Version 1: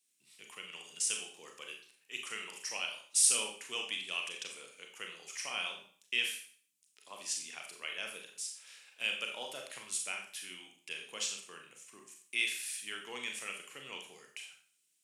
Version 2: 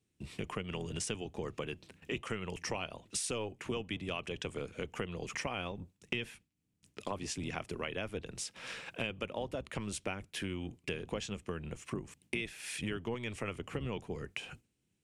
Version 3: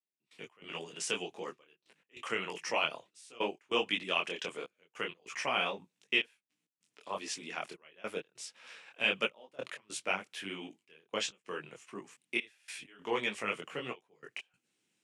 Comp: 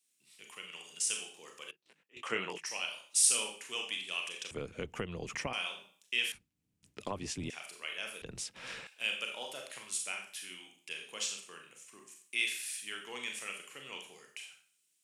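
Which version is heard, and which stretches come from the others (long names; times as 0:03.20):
1
0:01.71–0:02.66: punch in from 3
0:04.51–0:05.53: punch in from 2
0:06.32–0:07.50: punch in from 2
0:08.22–0:08.87: punch in from 2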